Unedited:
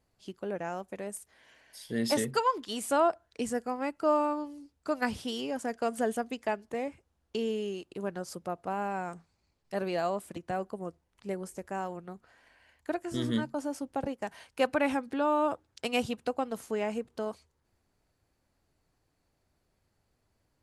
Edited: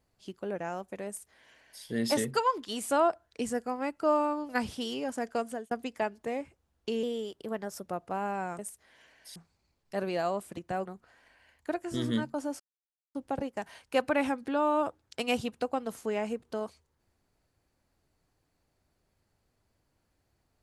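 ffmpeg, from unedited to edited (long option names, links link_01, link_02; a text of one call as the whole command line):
ffmpeg -i in.wav -filter_complex "[0:a]asplit=9[link_01][link_02][link_03][link_04][link_05][link_06][link_07][link_08][link_09];[link_01]atrim=end=4.492[link_10];[link_02]atrim=start=4.958:end=6.18,asetpts=PTS-STARTPTS,afade=type=out:start_time=0.862:duration=0.36[link_11];[link_03]atrim=start=6.18:end=7.504,asetpts=PTS-STARTPTS,afade=type=in:duration=0.004:curve=hsin[link_12];[link_04]atrim=start=7.5:end=8.43,asetpts=PTS-STARTPTS,asetrate=48951,aresample=44100[link_13];[link_05]atrim=start=8.426:end=9.152[link_14];[link_06]atrim=start=1.068:end=1.842[link_15];[link_07]atrim=start=9.148:end=10.652[link_16];[link_08]atrim=start=12.058:end=13.8,asetpts=PTS-STARTPTS,afade=type=out:start_time=1.738:duration=0.004:curve=hsin,apad=pad_dur=0.55[link_17];[link_09]atrim=start=13.8,asetpts=PTS-STARTPTS,afade=type=in:duration=0.004:curve=hsin[link_18];[link_11][link_12]concat=n=2:v=0:a=1[link_19];[link_10][link_19]acrossfade=duration=0.004:curve1=hsin:curve2=hsin[link_20];[link_20][link_13]acrossfade=duration=0.004:curve1=hsin:curve2=hsin[link_21];[link_21][link_14]acrossfade=duration=0.004:curve1=hsin:curve2=hsin[link_22];[link_22][link_15]acrossfade=duration=0.004:curve1=hsin:curve2=hsin[link_23];[link_23][link_16]acrossfade=duration=0.004:curve1=hsin:curve2=hsin[link_24];[link_17][link_18]concat=n=2:v=0:a=1[link_25];[link_24][link_25]acrossfade=duration=0.004:curve1=hsin:curve2=hsin" out.wav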